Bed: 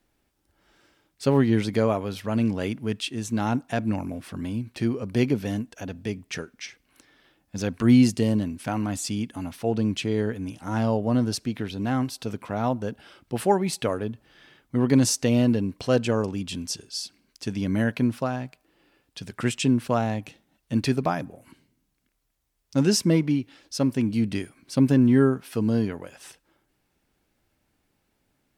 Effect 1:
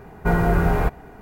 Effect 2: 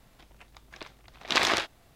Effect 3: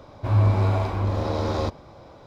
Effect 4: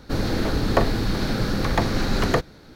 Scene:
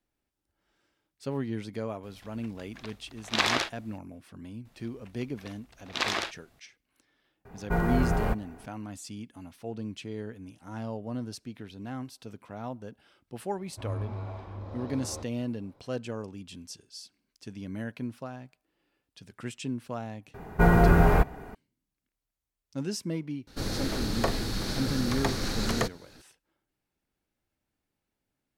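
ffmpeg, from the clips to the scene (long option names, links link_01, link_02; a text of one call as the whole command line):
ffmpeg -i bed.wav -i cue0.wav -i cue1.wav -i cue2.wav -i cue3.wav -filter_complex "[2:a]asplit=2[link_01][link_02];[1:a]asplit=2[link_03][link_04];[0:a]volume=-12.5dB[link_05];[3:a]lowpass=frequency=3100:poles=1[link_06];[4:a]equalizer=frequency=8800:width_type=o:width=2.1:gain=11.5[link_07];[link_01]atrim=end=1.95,asetpts=PTS-STARTPTS,volume=-1.5dB,afade=type=in:duration=0.004:curve=hsin,afade=type=out:start_time=1.946:duration=0.004:curve=hsin,adelay=2030[link_08];[link_02]atrim=end=1.95,asetpts=PTS-STARTPTS,volume=-5dB,afade=type=in:duration=0.004:curve=hsin,afade=type=out:start_time=1.946:duration=0.004:curve=hsin,adelay=205065S[link_09];[link_03]atrim=end=1.21,asetpts=PTS-STARTPTS,volume=-7.5dB,afade=type=in:duration=0.004:curve=hsin,afade=type=out:start_time=1.206:duration=0.004:curve=hsin,adelay=7450[link_10];[link_06]atrim=end=2.26,asetpts=PTS-STARTPTS,volume=-16dB,afade=type=in:duration=0.004:curve=hsin,afade=type=out:start_time=2.256:duration=0.004:curve=hsin,adelay=13540[link_11];[link_04]atrim=end=1.21,asetpts=PTS-STARTPTS,volume=-0.5dB,afade=type=in:duration=0.004:curve=hsin,afade=type=out:start_time=1.206:duration=0.004:curve=hsin,adelay=20340[link_12];[link_07]atrim=end=2.75,asetpts=PTS-STARTPTS,volume=-9dB,afade=type=in:duration=0.004:curve=hsin,afade=type=out:start_time=2.746:duration=0.004:curve=hsin,adelay=23470[link_13];[link_05][link_08][link_09][link_10][link_11][link_12][link_13]amix=inputs=7:normalize=0" out.wav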